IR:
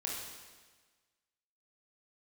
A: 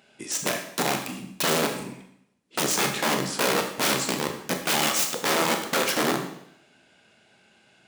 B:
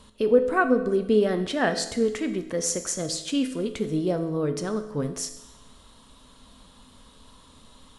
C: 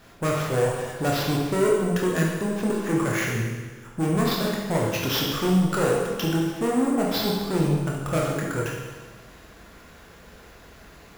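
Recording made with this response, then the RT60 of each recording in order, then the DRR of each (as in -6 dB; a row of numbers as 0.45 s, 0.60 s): C; 0.70 s, 0.95 s, 1.4 s; 3.5 dB, 7.0 dB, -3.0 dB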